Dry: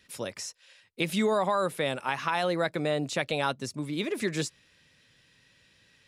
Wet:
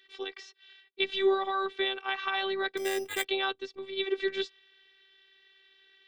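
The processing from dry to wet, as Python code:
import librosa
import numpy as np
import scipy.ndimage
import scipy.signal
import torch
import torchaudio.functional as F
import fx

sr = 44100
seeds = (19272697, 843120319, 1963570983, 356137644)

y = fx.cabinet(x, sr, low_hz=230.0, low_slope=24, high_hz=4100.0, hz=(260.0, 450.0, 660.0, 1800.0, 3400.0), db=(-8, 6, -9, 3, 10))
y = fx.robotise(y, sr, hz=388.0)
y = fx.resample_bad(y, sr, factor=8, down='none', up='hold', at=(2.77, 3.25))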